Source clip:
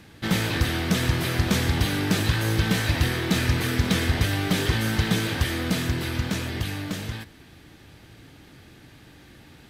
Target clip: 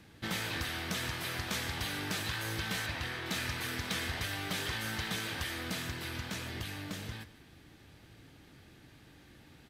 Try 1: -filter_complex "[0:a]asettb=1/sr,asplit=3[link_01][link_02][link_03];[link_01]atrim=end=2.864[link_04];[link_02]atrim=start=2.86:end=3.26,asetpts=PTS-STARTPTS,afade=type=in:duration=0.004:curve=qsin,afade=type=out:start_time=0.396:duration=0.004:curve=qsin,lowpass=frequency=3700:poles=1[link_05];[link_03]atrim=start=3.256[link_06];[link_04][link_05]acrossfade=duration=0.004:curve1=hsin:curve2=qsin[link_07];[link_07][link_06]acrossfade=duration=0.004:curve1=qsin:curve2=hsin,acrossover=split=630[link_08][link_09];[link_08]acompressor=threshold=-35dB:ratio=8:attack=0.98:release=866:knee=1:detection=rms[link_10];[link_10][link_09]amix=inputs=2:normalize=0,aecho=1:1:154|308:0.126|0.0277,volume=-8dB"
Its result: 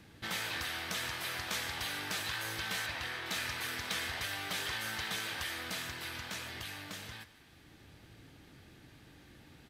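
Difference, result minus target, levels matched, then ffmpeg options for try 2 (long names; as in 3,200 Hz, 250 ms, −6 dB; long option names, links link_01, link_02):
downward compressor: peak gain reduction +9 dB
-filter_complex "[0:a]asettb=1/sr,asplit=3[link_01][link_02][link_03];[link_01]atrim=end=2.864[link_04];[link_02]atrim=start=2.86:end=3.26,asetpts=PTS-STARTPTS,afade=type=in:duration=0.004:curve=qsin,afade=type=out:start_time=0.396:duration=0.004:curve=qsin,lowpass=frequency=3700:poles=1[link_05];[link_03]atrim=start=3.256[link_06];[link_04][link_05]acrossfade=duration=0.004:curve1=hsin:curve2=qsin[link_07];[link_07][link_06]acrossfade=duration=0.004:curve1=qsin:curve2=hsin,acrossover=split=630[link_08][link_09];[link_08]acompressor=threshold=-25dB:ratio=8:attack=0.98:release=866:knee=1:detection=rms[link_10];[link_10][link_09]amix=inputs=2:normalize=0,aecho=1:1:154|308:0.126|0.0277,volume=-8dB"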